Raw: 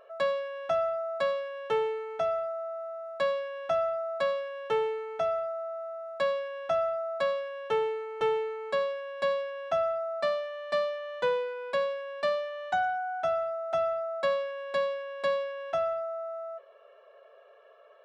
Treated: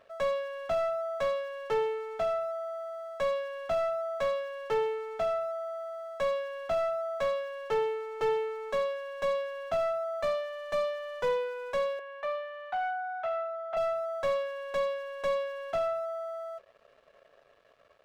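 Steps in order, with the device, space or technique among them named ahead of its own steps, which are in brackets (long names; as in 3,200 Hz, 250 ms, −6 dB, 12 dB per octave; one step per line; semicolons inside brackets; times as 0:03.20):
early transistor amplifier (dead-zone distortion −58.5 dBFS; slew-rate limiting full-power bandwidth 41 Hz)
0:11.99–0:13.77: three-way crossover with the lows and the highs turned down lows −18 dB, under 560 Hz, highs −18 dB, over 3,000 Hz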